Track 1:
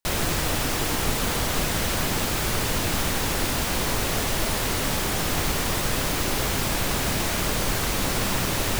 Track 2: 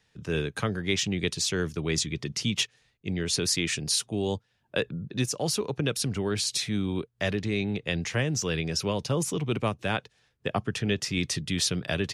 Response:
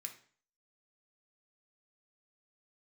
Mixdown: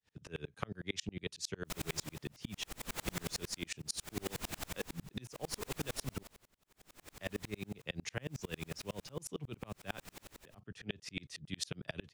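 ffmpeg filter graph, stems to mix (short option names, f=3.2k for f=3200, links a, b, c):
-filter_complex "[0:a]alimiter=limit=-18.5dB:level=0:latency=1:release=190,acompressor=mode=upward:threshold=-33dB:ratio=2.5,tremolo=f=0.71:d=0.94,adelay=1650,volume=-6dB,afade=t=out:st=5.62:d=0.74:silence=0.281838,asplit=3[a][b][c];[b]volume=-4.5dB[d];[c]volume=-7.5dB[e];[1:a]acompressor=threshold=-36dB:ratio=2.5,volume=2dB,asplit=3[f][g][h];[f]atrim=end=6.23,asetpts=PTS-STARTPTS,afade=t=out:st=6.226:d=0.004:c=hsin[i];[g]atrim=start=6.23:end=7.15,asetpts=PTS-STARTPTS,volume=0[j];[h]atrim=start=7.15,asetpts=PTS-STARTPTS,afade=t=in:d=0.004:c=hsin[k];[i][j][k]concat=n=3:v=0:a=1[l];[2:a]atrim=start_sample=2205[m];[d][m]afir=irnorm=-1:irlink=0[n];[e]aecho=0:1:152:1[o];[a][l][n][o]amix=inputs=4:normalize=0,aeval=exprs='val(0)*pow(10,-37*if(lt(mod(-11*n/s,1),2*abs(-11)/1000),1-mod(-11*n/s,1)/(2*abs(-11)/1000),(mod(-11*n/s,1)-2*abs(-11)/1000)/(1-2*abs(-11)/1000))/20)':c=same"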